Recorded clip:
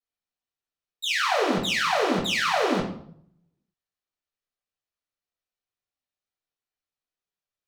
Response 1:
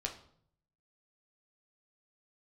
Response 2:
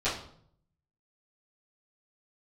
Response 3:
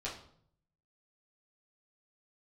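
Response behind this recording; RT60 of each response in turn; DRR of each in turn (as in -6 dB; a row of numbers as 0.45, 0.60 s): 2; 0.60, 0.60, 0.60 s; 1.5, -14.5, -7.0 dB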